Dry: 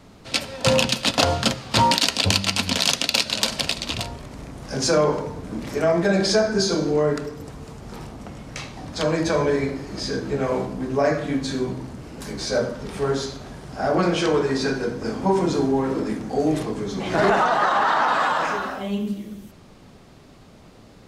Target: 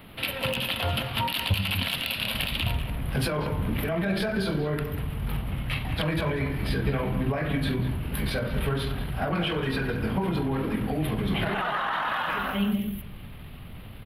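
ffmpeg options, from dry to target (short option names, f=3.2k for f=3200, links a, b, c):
-filter_complex "[0:a]firequalizer=gain_entry='entry(620,0);entry(3000,10);entry(6400,-27);entry(11000,15)':delay=0.05:min_phase=1,aeval=exprs='0.841*(abs(mod(val(0)/0.841+3,4)-2)-1)':c=same,alimiter=limit=-13.5dB:level=0:latency=1:release=29,acompressor=threshold=-24dB:ratio=6,asubboost=boost=4:cutoff=160,atempo=1.5,asplit=2[a][b];[b]adelay=190,highpass=300,lowpass=3.4k,asoftclip=type=hard:threshold=-23.5dB,volume=-10dB[c];[a][c]amix=inputs=2:normalize=0"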